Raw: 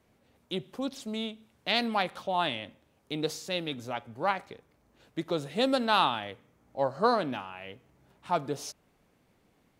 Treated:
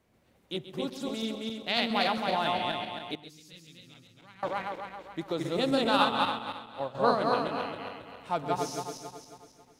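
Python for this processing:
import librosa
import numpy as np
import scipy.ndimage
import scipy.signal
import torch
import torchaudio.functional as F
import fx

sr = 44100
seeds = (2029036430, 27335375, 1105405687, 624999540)

y = fx.reverse_delay_fb(x, sr, ms=136, feedback_pct=65, wet_db=-0.5)
y = fx.tone_stack(y, sr, knobs='6-0-2', at=(3.15, 4.43))
y = y + 10.0 ** (-13.5 / 20.0) * np.pad(y, (int(130 * sr / 1000.0), 0))[:len(y)]
y = fx.upward_expand(y, sr, threshold_db=-34.0, expansion=1.5, at=(5.91, 6.95))
y = y * 10.0 ** (-2.5 / 20.0)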